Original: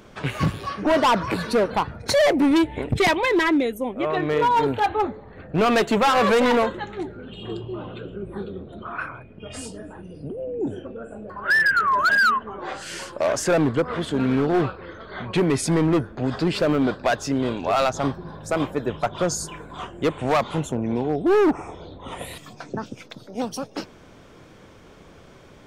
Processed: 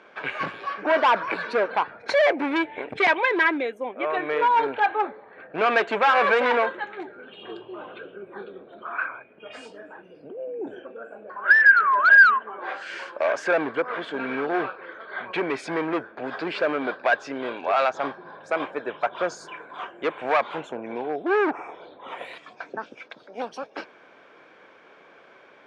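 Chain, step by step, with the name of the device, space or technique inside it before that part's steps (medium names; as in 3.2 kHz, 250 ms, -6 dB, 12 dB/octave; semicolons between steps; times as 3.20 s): tin-can telephone (band-pass 490–2800 Hz; small resonant body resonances 1.6/2.3 kHz, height 8 dB, ringing for 20 ms)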